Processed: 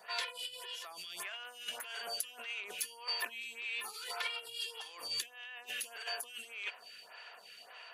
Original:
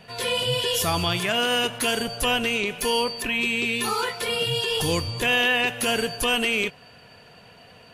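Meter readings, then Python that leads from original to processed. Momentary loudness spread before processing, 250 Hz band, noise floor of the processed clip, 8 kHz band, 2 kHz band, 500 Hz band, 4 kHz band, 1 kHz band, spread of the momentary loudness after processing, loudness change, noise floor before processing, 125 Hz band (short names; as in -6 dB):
4 LU, -38.5 dB, -56 dBFS, -13.5 dB, -17.0 dB, -26.0 dB, -15.5 dB, -19.0 dB, 14 LU, -17.0 dB, -50 dBFS, under -40 dB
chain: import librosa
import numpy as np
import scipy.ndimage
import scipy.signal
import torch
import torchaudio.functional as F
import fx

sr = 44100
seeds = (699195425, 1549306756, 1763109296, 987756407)

y = fx.over_compress(x, sr, threshold_db=-30.0, ratio=-0.5)
y = scipy.signal.sosfilt(scipy.signal.butter(2, 1000.0, 'highpass', fs=sr, output='sos'), y)
y = fx.stagger_phaser(y, sr, hz=1.7)
y = F.gain(torch.from_numpy(y), -4.0).numpy()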